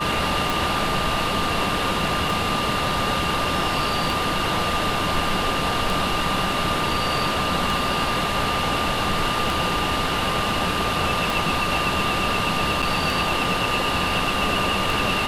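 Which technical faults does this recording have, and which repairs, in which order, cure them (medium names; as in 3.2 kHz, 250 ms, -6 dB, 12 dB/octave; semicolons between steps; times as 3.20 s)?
tick 33 1/3 rpm
whine 1.2 kHz -27 dBFS
12.82–12.83 s: dropout 6.6 ms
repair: de-click; band-stop 1.2 kHz, Q 30; interpolate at 12.82 s, 6.6 ms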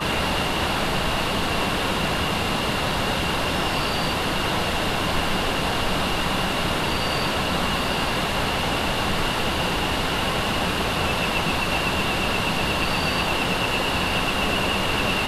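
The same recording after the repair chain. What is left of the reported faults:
nothing left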